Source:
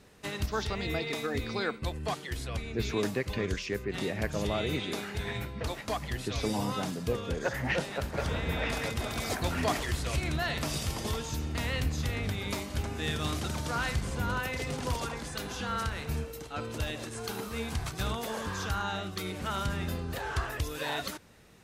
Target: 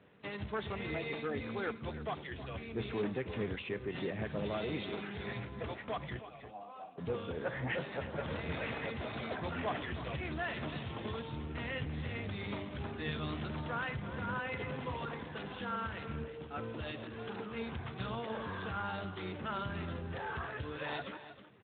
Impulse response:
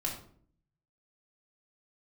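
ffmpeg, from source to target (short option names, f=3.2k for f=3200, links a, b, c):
-filter_complex "[0:a]asettb=1/sr,asplit=3[a][b][c];[a]atrim=end=9.194[d];[b]atrim=start=9.19:end=10.61,asetpts=PTS-STARTPTS,afade=t=in:d=0.004:c=qsin,afade=t=out:st=1.416:d=0.004:c=qsin,bandreject=f=49.82:t=h:w=4,bandreject=f=99.64:t=h:w=4,bandreject=f=149.46:t=h:w=4,bandreject=f=199.28:t=h:w=4,bandreject=f=249.1:t=h:w=4,bandreject=f=298.92:t=h:w=4,bandreject=f=348.74:t=h:w=4,bandreject=f=398.56:t=h:w=4,bandreject=f=448.38:t=h:w=4[e];[c]atrim=start=10.606[f];[d][e]acrossfade=d=0.004:c1=hsin:c2=qsin[g];[g][f]acrossfade=d=0.004:c1=qsin:c2=hsin,asoftclip=type=tanh:threshold=-25dB,asettb=1/sr,asplit=3[h][i][j];[h]atrim=end=6.194[k];[i]atrim=start=6.19:end=6.98,asetpts=PTS-STARTPTS,afade=t=in:d=0.004:c=qsin,afade=t=out:st=0.786:d=0.004:c=qsin,asplit=3[l][m][n];[l]bandpass=f=730:t=q:w=8,volume=0dB[o];[m]bandpass=f=1.09k:t=q:w=8,volume=-6dB[p];[n]bandpass=f=2.44k:t=q:w=8,volume=-9dB[q];[o][p][q]amix=inputs=3:normalize=0[r];[j]atrim=start=6.976[s];[k][r]acrossfade=d=0.004:c1=hsin:c2=qsin[t];[t][s]acrossfade=d=0.004:c1=qsin:c2=hsin,aecho=1:1:317:0.237,asplit=2[u][v];[1:a]atrim=start_sample=2205,asetrate=61740,aresample=44100,highshelf=f=5.5k:g=8[w];[v][w]afir=irnorm=-1:irlink=0,volume=-19.5dB[x];[u][x]amix=inputs=2:normalize=0,volume=-4dB" -ar 8000 -c:a libspeex -b:a 11k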